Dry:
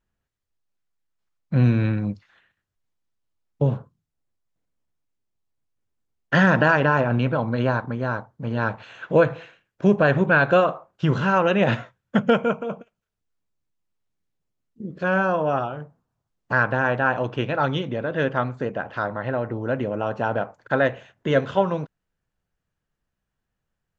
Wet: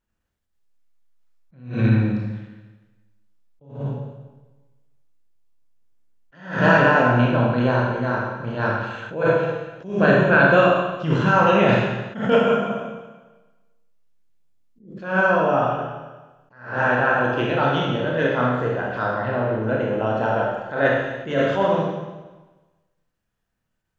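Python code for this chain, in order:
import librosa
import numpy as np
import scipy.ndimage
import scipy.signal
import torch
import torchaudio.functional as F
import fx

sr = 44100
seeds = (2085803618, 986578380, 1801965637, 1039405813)

y = fx.hum_notches(x, sr, base_hz=50, count=3)
y = fx.rev_schroeder(y, sr, rt60_s=1.2, comb_ms=25, drr_db=-3.0)
y = fx.attack_slew(y, sr, db_per_s=120.0)
y = F.gain(torch.from_numpy(y), -1.0).numpy()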